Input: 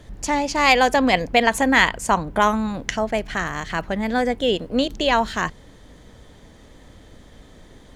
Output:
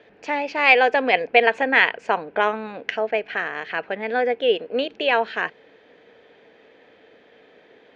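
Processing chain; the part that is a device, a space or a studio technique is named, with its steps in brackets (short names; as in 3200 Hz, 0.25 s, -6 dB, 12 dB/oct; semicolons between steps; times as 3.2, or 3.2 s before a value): phone earpiece (speaker cabinet 340–4000 Hz, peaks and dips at 450 Hz +10 dB, 710 Hz +4 dB, 1100 Hz -4 dB, 1600 Hz +6 dB, 2500 Hz +10 dB, 3700 Hz -3 dB); gain -4 dB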